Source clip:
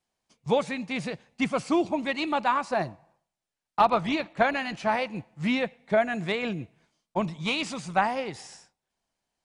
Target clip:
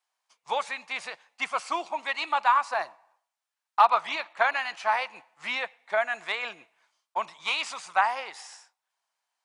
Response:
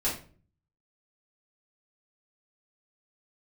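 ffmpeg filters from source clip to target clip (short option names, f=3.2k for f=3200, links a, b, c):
-af "highpass=f=1k:t=q:w=1.6"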